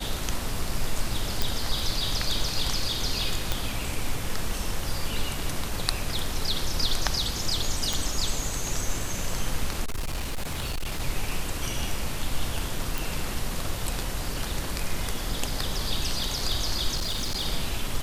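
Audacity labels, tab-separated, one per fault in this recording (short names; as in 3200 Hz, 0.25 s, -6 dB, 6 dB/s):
1.420000	1.420000	pop
3.520000	3.520000	pop
7.930000	7.930000	pop
9.840000	11.010000	clipped -25.5 dBFS
12.980000	12.980000	pop
16.950000	17.460000	clipped -24 dBFS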